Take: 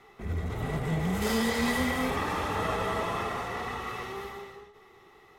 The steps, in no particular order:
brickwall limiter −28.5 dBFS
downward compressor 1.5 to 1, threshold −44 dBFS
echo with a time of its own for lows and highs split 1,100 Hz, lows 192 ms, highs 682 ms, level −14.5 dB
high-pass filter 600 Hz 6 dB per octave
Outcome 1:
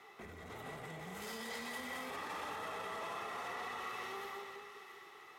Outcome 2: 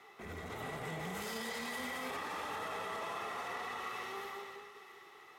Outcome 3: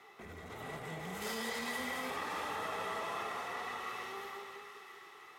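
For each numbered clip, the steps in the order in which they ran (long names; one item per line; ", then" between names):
brickwall limiter, then echo with a time of its own for lows and highs, then downward compressor, then high-pass filter
high-pass filter, then brickwall limiter, then downward compressor, then echo with a time of its own for lows and highs
echo with a time of its own for lows and highs, then downward compressor, then high-pass filter, then brickwall limiter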